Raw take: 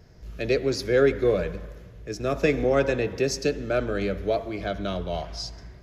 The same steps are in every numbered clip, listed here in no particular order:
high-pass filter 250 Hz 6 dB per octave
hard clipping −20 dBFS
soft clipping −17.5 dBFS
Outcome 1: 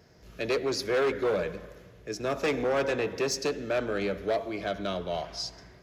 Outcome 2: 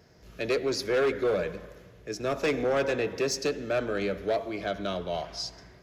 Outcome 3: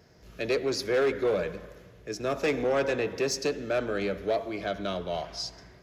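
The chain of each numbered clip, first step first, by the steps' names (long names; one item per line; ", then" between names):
hard clipping, then soft clipping, then high-pass filter
high-pass filter, then hard clipping, then soft clipping
soft clipping, then high-pass filter, then hard clipping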